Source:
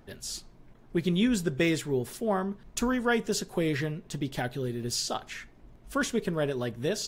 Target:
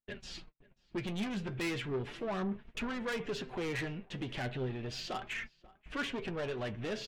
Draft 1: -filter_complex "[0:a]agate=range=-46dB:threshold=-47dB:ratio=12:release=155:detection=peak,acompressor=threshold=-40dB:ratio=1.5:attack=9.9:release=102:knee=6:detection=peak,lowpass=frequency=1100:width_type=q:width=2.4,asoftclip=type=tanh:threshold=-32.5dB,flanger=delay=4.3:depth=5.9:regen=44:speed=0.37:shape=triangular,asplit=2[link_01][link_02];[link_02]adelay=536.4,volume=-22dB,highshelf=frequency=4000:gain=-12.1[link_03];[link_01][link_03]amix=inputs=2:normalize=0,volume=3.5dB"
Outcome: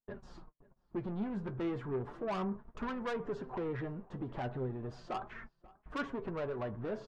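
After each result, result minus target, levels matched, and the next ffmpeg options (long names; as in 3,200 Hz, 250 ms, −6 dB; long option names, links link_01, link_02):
2,000 Hz band −6.0 dB; downward compressor: peak gain reduction +2.5 dB
-filter_complex "[0:a]agate=range=-46dB:threshold=-47dB:ratio=12:release=155:detection=peak,acompressor=threshold=-40dB:ratio=1.5:attack=9.9:release=102:knee=6:detection=peak,lowpass=frequency=2600:width_type=q:width=2.4,asoftclip=type=tanh:threshold=-32.5dB,flanger=delay=4.3:depth=5.9:regen=44:speed=0.37:shape=triangular,asplit=2[link_01][link_02];[link_02]adelay=536.4,volume=-22dB,highshelf=frequency=4000:gain=-12.1[link_03];[link_01][link_03]amix=inputs=2:normalize=0,volume=3.5dB"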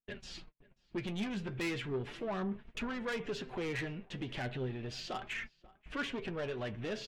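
downward compressor: peak gain reduction +2.5 dB
-filter_complex "[0:a]agate=range=-46dB:threshold=-47dB:ratio=12:release=155:detection=peak,acompressor=threshold=-32dB:ratio=1.5:attack=9.9:release=102:knee=6:detection=peak,lowpass=frequency=2600:width_type=q:width=2.4,asoftclip=type=tanh:threshold=-32.5dB,flanger=delay=4.3:depth=5.9:regen=44:speed=0.37:shape=triangular,asplit=2[link_01][link_02];[link_02]adelay=536.4,volume=-22dB,highshelf=frequency=4000:gain=-12.1[link_03];[link_01][link_03]amix=inputs=2:normalize=0,volume=3.5dB"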